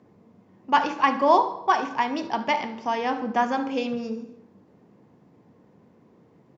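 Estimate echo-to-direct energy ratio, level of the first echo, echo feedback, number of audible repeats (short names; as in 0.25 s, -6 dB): -15.0 dB, -16.0 dB, 42%, 3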